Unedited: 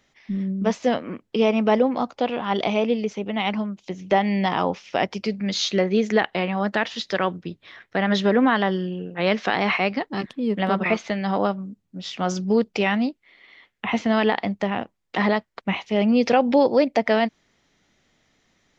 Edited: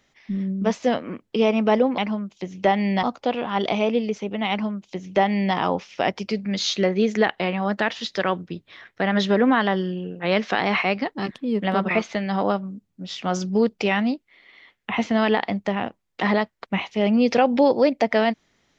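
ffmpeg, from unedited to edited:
-filter_complex "[0:a]asplit=3[a][b][c];[a]atrim=end=1.982[d];[b]atrim=start=3.448:end=4.502[e];[c]atrim=start=1.978[f];[d][e]acrossfade=d=0.004:c1=hsin:c2=hsin[g];[g][f]acrossfade=d=0.004:c1=hsin:c2=hsin"

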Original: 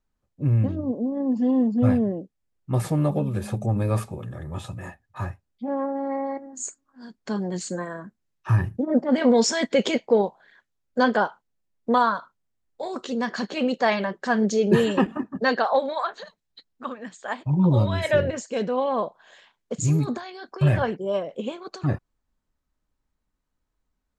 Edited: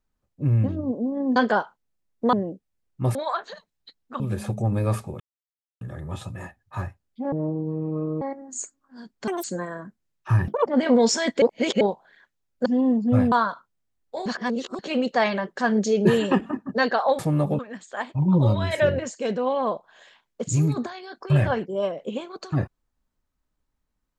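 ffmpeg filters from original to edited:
-filter_complex "[0:a]asplit=20[a][b][c][d][e][f][g][h][i][j][k][l][m][n][o][p][q][r][s][t];[a]atrim=end=1.362[u];[b]atrim=start=11.008:end=11.982[v];[c]atrim=start=2.018:end=2.842[w];[d]atrim=start=15.848:end=16.902[x];[e]atrim=start=3.238:end=4.24,asetpts=PTS-STARTPTS,afade=t=out:st=0.998:d=0.004:c=hsin,apad=pad_dur=0.61[y];[f]atrim=start=4.24:end=5.754,asetpts=PTS-STARTPTS,afade=t=in:d=0.004:c=hsin[z];[g]atrim=start=5.75:end=6.26,asetpts=PTS-STARTPTS,asetrate=25137,aresample=44100[aa];[h]atrim=start=6.256:end=7.324[ab];[i]atrim=start=7.32:end=7.63,asetpts=PTS-STARTPTS,asetrate=84231,aresample=44100[ac];[j]atrim=start=7.626:end=8.674[ad];[k]atrim=start=8.67:end=9.01,asetpts=PTS-STARTPTS,asetrate=82908,aresample=44100[ae];[l]atrim=start=9.006:end=9.772[af];[m]atrim=start=9.768:end=10.162,asetpts=PTS-STARTPTS,areverse[ag];[n]atrim=start=10.158:end=11.012[ah];[o]atrim=start=1.358:end=2.022[ai];[p]atrim=start=11.978:end=12.922[aj];[q]atrim=start=12.918:end=13.452,asetpts=PTS-STARTPTS,areverse[ak];[r]atrim=start=13.448:end=15.852[al];[s]atrim=start=2.838:end=3.242[am];[t]atrim=start=16.898[an];[u][v]acrossfade=d=0.004:c1=hsin:c2=hsin[ao];[ao][w]acrossfade=d=0.004:c1=hsin:c2=hsin[ap];[ap][x]acrossfade=d=0.004:c1=hsin:c2=hsin[aq];[y][z]concat=n=2:v=0:a=1[ar];[aq][ar]acrossfade=d=0.004:c1=hsin:c2=hsin[as];[as][aa]acrossfade=d=0.004:c1=hsin:c2=hsin[at];[at][ab]acrossfade=d=0.004:c1=hsin:c2=hsin[au];[au][ac]acrossfade=d=0.004:c1=hsin:c2=hsin[av];[av][ad]acrossfade=d=0.004:c1=hsin:c2=hsin[aw];[aw][ae]acrossfade=d=0.004:c1=hsin:c2=hsin[ax];[ax][af]acrossfade=d=0.004:c1=hsin:c2=hsin[ay];[ay][ag]acrossfade=d=0.004:c1=hsin:c2=hsin[az];[az][ah]acrossfade=d=0.004:c1=hsin:c2=hsin[ba];[ba][ai]acrossfade=d=0.004:c1=hsin:c2=hsin[bb];[bb][aj]acrossfade=d=0.004:c1=hsin:c2=hsin[bc];[bc][ak]acrossfade=d=0.004:c1=hsin:c2=hsin[bd];[bd][al]acrossfade=d=0.004:c1=hsin:c2=hsin[be];[be][am]acrossfade=d=0.004:c1=hsin:c2=hsin[bf];[bf][an]acrossfade=d=0.004:c1=hsin:c2=hsin"

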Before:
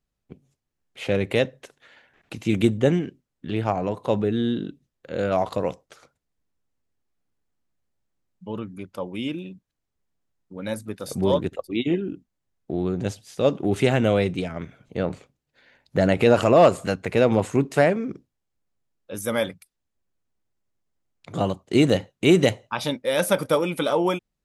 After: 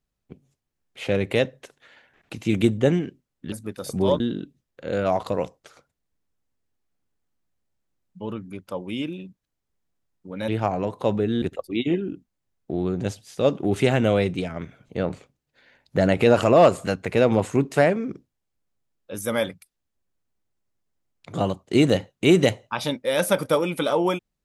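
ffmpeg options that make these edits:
-filter_complex "[0:a]asplit=5[a][b][c][d][e];[a]atrim=end=3.522[f];[b]atrim=start=10.738:end=11.422[g];[c]atrim=start=4.458:end=10.742[h];[d]atrim=start=3.518:end=4.462[i];[e]atrim=start=11.418[j];[f][g]acrossfade=d=0.004:c1=hsin:c2=hsin[k];[k][h]acrossfade=d=0.004:c1=hsin:c2=hsin[l];[l][i]acrossfade=d=0.004:c1=hsin:c2=hsin[m];[m][j]acrossfade=d=0.004:c1=hsin:c2=hsin"

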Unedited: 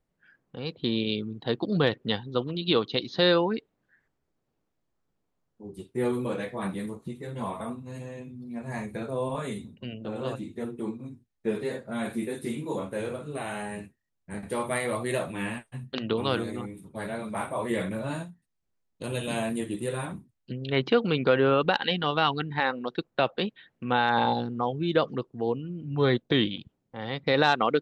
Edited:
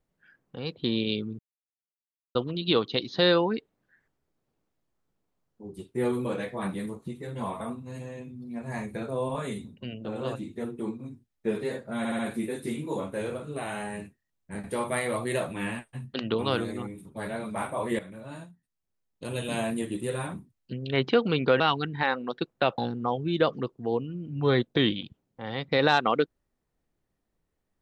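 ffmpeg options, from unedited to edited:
-filter_complex "[0:a]asplit=9[a][b][c][d][e][f][g][h][i];[a]atrim=end=1.39,asetpts=PTS-STARTPTS,afade=t=out:st=1.386:d=0.004:c=hsin[j];[b]atrim=start=1.39:end=2.35,asetpts=PTS-STARTPTS,volume=0[k];[c]atrim=start=2.35:end=12.052,asetpts=PTS-STARTPTS,afade=t=in:d=0.004:c=hsin[l];[d]atrim=start=11.978:end=12.052[m];[e]atrim=start=11.978:end=12.052[n];[f]atrim=start=11.978:end=17.78,asetpts=PTS-STARTPTS,afade=t=out:st=5.798:d=0.004:c=hsin:silence=0.188365[o];[g]atrim=start=17.78:end=21.392,asetpts=PTS-STARTPTS,afade=t=in:d=1.6:silence=0.188365[p];[h]atrim=start=22.168:end=23.352[q];[i]atrim=start=24.328[r];[j][k][l]concat=n=3:v=0:a=1[s];[s][m]acrossfade=d=0.004:c1=hsin:c2=hsin[t];[t][n]acrossfade=d=0.004:c1=hsin:c2=hsin[u];[o][p]concat=n=2:v=0:a=1[v];[u][v]acrossfade=d=0.004:c1=hsin:c2=hsin[w];[w][q]acrossfade=d=0.004:c1=hsin:c2=hsin[x];[x][r]acrossfade=d=0.004:c1=hsin:c2=hsin"

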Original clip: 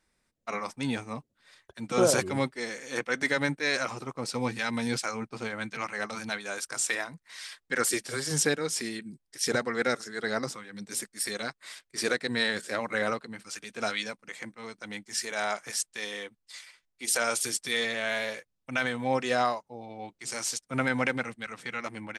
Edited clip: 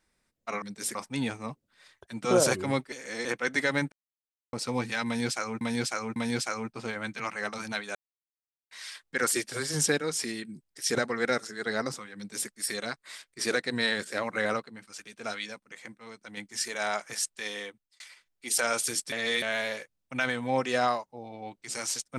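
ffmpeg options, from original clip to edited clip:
-filter_complex "[0:a]asplit=16[a][b][c][d][e][f][g][h][i][j][k][l][m][n][o][p];[a]atrim=end=0.622[q];[b]atrim=start=10.728:end=11.062[r];[c]atrim=start=0.618:end=2.592[s];[d]atrim=start=2.588:end=2.922,asetpts=PTS-STARTPTS,areverse[t];[e]atrim=start=2.918:end=3.59,asetpts=PTS-STARTPTS,afade=t=out:st=0.668:d=0.004:c=hsin[u];[f]atrim=start=3.59:end=4.2,asetpts=PTS-STARTPTS,volume=0[v];[g]atrim=start=4.2:end=5.282,asetpts=PTS-STARTPTS,afade=t=in:d=0.004:c=hsin[w];[h]atrim=start=4.728:end=5.282[x];[i]atrim=start=4.728:end=6.52,asetpts=PTS-STARTPTS,afade=t=out:st=1.788:d=0.004:c=hsin[y];[j]atrim=start=6.52:end=7.28,asetpts=PTS-STARTPTS,volume=0[z];[k]atrim=start=7.28:end=13.172,asetpts=PTS-STARTPTS,afade=t=in:d=0.004:c=hsin[aa];[l]atrim=start=13.168:end=14.942,asetpts=PTS-STARTPTS,volume=-4.5dB[ab];[m]atrim=start=14.938:end=16.57,asetpts=PTS-STARTPTS,afade=t=out:st=1.252:d=0.38[ac];[n]atrim=start=16.57:end=17.692,asetpts=PTS-STARTPTS,afade=t=in:d=0.004:c=hsin[ad];[o]atrim=start=17.688:end=17.992,asetpts=PTS-STARTPTS,areverse[ae];[p]atrim=start=17.988[af];[q][r]acrossfade=d=0.004:c1=hsin:c2=hsin[ag];[ag][s]acrossfade=d=0.004:c1=hsin:c2=hsin[ah];[ah][t]acrossfade=d=0.004:c1=hsin:c2=hsin[ai];[u][v][w]concat=n=3:v=0:a=1[aj];[ai][aj]acrossfade=d=0.004:c1=hsin:c2=hsin[ak];[ak][x]acrossfade=d=0.004:c1=hsin:c2=hsin[al];[y][z][aa]concat=n=3:v=0:a=1[am];[al][am]acrossfade=d=0.004:c1=hsin:c2=hsin[an];[an][ab]acrossfade=d=0.004:c1=hsin:c2=hsin[ao];[ac][ad]concat=n=2:v=0:a=1[ap];[ao][ap]acrossfade=d=0.004:c1=hsin:c2=hsin[aq];[aq][ae]acrossfade=d=0.004:c1=hsin:c2=hsin[ar];[ar][af]acrossfade=d=0.004:c1=hsin:c2=hsin"

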